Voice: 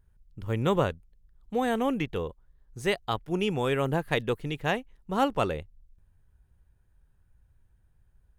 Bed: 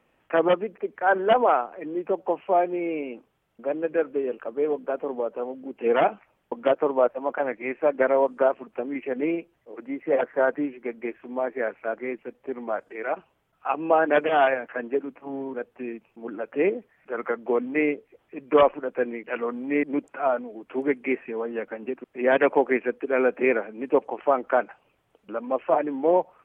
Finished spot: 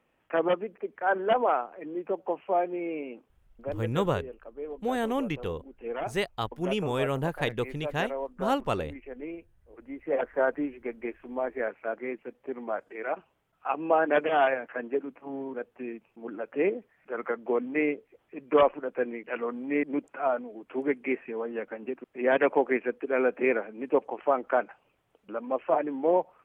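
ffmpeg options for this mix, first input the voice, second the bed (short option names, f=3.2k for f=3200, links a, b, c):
-filter_complex "[0:a]adelay=3300,volume=-2dB[a];[1:a]volume=4.5dB,afade=t=out:st=3.5:d=0.54:silence=0.398107,afade=t=in:st=9.67:d=0.67:silence=0.334965[b];[a][b]amix=inputs=2:normalize=0"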